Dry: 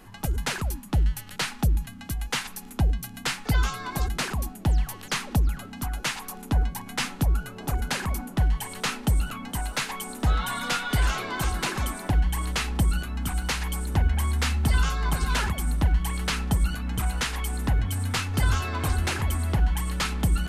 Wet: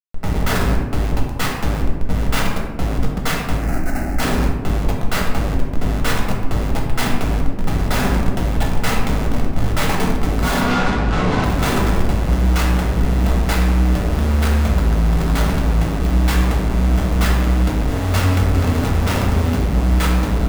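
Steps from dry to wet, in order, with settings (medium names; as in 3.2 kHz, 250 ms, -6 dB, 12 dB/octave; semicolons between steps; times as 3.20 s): tracing distortion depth 0.16 ms; compression 8:1, threshold -22 dBFS, peak gain reduction 6 dB; Schmitt trigger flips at -30 dBFS; 3.57–4.20 s: static phaser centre 690 Hz, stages 8; 9.08–9.71 s: integer overflow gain 26.5 dB; 10.61–11.44 s: distance through air 110 m; reverberation RT60 1.5 s, pre-delay 4 ms, DRR -2 dB; tape noise reduction on one side only decoder only; trim +5.5 dB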